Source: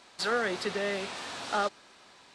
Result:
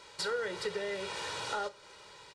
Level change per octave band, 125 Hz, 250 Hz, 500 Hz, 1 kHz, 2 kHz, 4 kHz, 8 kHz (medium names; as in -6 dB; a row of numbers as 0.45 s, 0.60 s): -5.5 dB, -9.5 dB, -3.5 dB, -6.0 dB, -5.5 dB, -2.5 dB, -1.5 dB